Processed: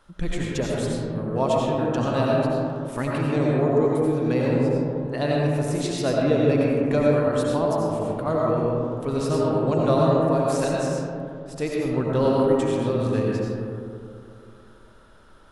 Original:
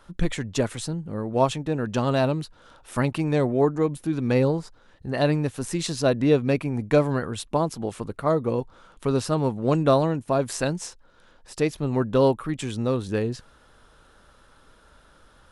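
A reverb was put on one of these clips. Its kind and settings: algorithmic reverb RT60 2.6 s, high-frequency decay 0.3×, pre-delay 50 ms, DRR -4 dB; trim -4.5 dB

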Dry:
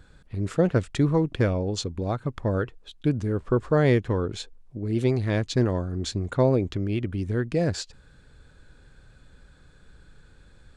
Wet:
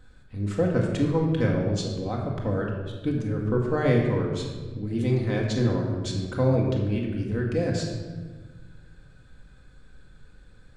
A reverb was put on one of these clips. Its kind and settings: simulated room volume 1200 m³, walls mixed, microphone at 2 m; trim -5 dB

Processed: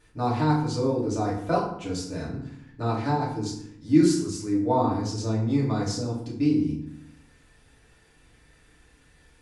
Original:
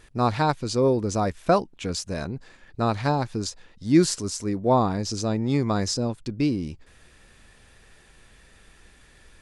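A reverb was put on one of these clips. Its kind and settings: FDN reverb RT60 0.7 s, low-frequency decay 1.5×, high-frequency decay 0.65×, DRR -6.5 dB; trim -11.5 dB

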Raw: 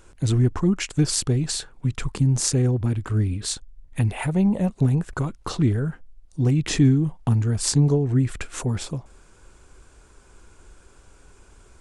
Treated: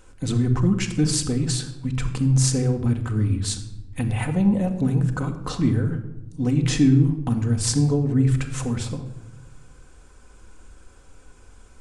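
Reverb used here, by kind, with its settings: simulated room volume 3800 m³, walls furnished, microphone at 2 m; trim -1.5 dB

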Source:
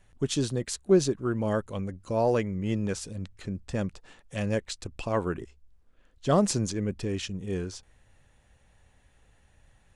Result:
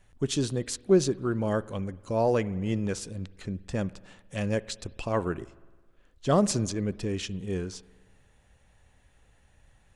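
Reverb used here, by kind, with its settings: spring tank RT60 1.4 s, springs 53 ms, chirp 50 ms, DRR 19.5 dB

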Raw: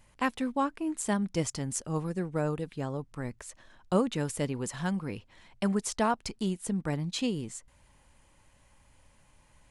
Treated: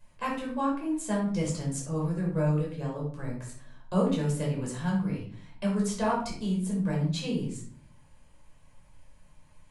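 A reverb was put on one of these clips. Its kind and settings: simulated room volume 570 m³, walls furnished, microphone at 5.3 m; trim -8.5 dB

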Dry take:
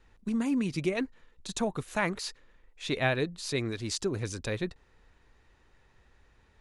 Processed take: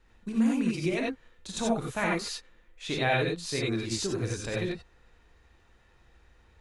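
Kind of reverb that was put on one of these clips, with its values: gated-style reverb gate 110 ms rising, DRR -3 dB; trim -2.5 dB

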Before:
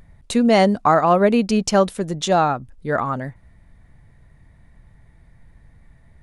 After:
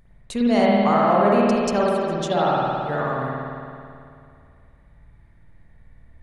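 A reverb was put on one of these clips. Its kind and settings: spring tank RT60 2.4 s, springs 54 ms, chirp 35 ms, DRR -5.5 dB; trim -8.5 dB

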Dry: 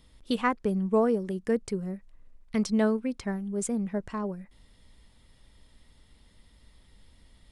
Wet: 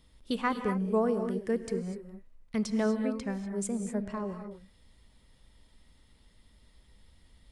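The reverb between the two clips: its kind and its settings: gated-style reverb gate 270 ms rising, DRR 7 dB; trim -3.5 dB

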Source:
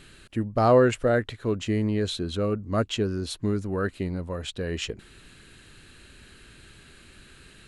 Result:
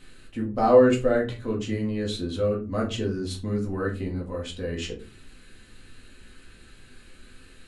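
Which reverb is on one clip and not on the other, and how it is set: simulated room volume 140 m³, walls furnished, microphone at 2 m; trim -6 dB

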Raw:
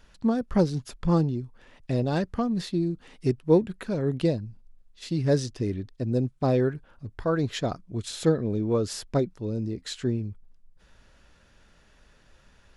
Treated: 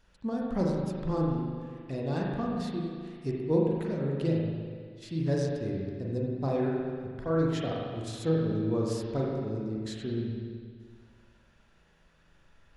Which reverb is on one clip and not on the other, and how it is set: spring tank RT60 1.9 s, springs 37/43 ms, chirp 65 ms, DRR -3 dB; trim -9 dB

